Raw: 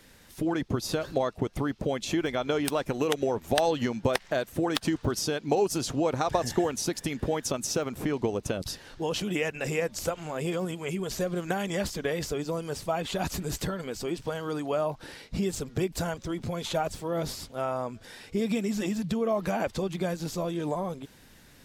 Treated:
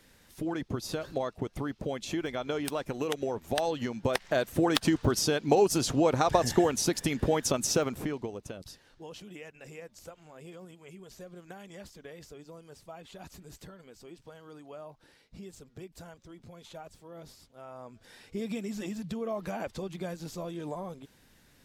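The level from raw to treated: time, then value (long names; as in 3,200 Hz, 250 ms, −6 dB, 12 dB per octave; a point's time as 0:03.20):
0:03.92 −5 dB
0:04.46 +2 dB
0:07.84 +2 dB
0:08.28 −9.5 dB
0:09.37 −17 dB
0:17.62 −17 dB
0:18.15 −7 dB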